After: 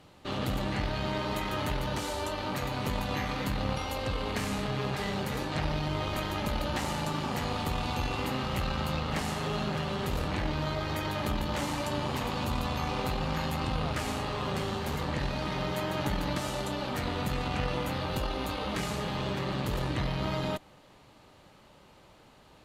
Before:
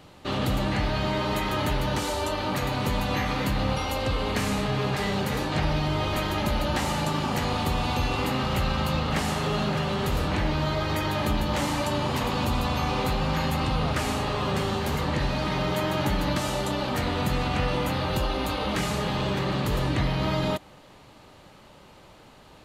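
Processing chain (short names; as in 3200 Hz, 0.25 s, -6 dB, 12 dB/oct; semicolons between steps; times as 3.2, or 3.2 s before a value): added harmonics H 3 -22 dB, 6 -22 dB, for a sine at -4.5 dBFS; gain -3.5 dB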